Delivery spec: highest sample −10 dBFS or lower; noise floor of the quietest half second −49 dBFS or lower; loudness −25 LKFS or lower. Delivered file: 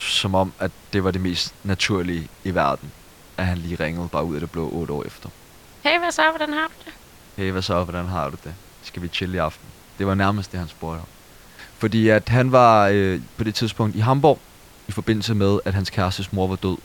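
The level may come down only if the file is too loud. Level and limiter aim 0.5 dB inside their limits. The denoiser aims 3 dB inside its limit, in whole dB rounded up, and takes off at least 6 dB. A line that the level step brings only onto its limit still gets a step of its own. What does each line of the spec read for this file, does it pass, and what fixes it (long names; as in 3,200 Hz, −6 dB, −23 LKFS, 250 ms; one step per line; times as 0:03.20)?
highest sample −3.0 dBFS: out of spec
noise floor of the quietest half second −47 dBFS: out of spec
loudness −21.5 LKFS: out of spec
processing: level −4 dB
brickwall limiter −10.5 dBFS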